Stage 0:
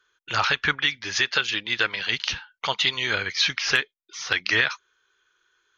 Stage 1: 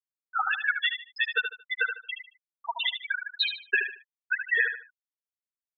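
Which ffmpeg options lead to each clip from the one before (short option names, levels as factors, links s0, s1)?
-af "afftfilt=real='re*gte(hypot(re,im),0.355)':imag='im*gte(hypot(re,im),0.355)':win_size=1024:overlap=0.75,aecho=1:1:75|150|225:0.422|0.118|0.0331"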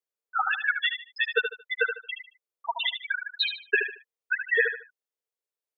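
-af "highpass=f=450:t=q:w=4.9"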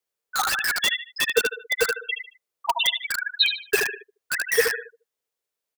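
-filter_complex "[0:a]acrossover=split=600|980|2300[s0][s1][s2][s3];[s0]aecho=1:1:200:0.133[s4];[s2]aeval=exprs='(mod(26.6*val(0)+1,2)-1)/26.6':c=same[s5];[s4][s1][s5][s3]amix=inputs=4:normalize=0,volume=2.24"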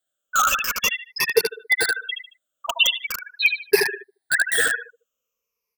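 -af "afftfilt=real='re*pow(10,20/40*sin(2*PI*(0.83*log(max(b,1)*sr/1024/100)/log(2)-(-0.43)*(pts-256)/sr)))':imag='im*pow(10,20/40*sin(2*PI*(0.83*log(max(b,1)*sr/1024/100)/log(2)-(-0.43)*(pts-256)/sr)))':win_size=1024:overlap=0.75,volume=0.891"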